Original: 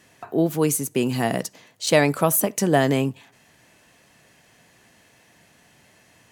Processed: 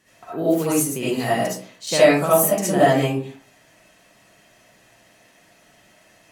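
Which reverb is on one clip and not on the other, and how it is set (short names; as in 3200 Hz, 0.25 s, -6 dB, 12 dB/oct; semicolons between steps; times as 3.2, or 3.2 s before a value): digital reverb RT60 0.45 s, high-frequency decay 0.5×, pre-delay 30 ms, DRR -10 dB; gain -8 dB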